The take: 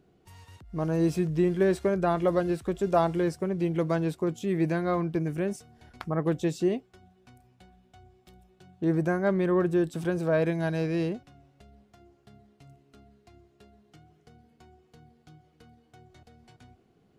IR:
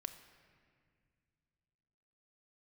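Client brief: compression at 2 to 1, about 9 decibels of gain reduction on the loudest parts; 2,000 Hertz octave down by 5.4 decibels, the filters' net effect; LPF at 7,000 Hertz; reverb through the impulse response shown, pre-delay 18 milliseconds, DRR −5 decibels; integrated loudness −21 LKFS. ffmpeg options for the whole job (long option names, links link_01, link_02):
-filter_complex "[0:a]lowpass=7000,equalizer=frequency=2000:width_type=o:gain=-7.5,acompressor=threshold=-37dB:ratio=2,asplit=2[link_01][link_02];[1:a]atrim=start_sample=2205,adelay=18[link_03];[link_02][link_03]afir=irnorm=-1:irlink=0,volume=8dB[link_04];[link_01][link_04]amix=inputs=2:normalize=0,volume=8dB"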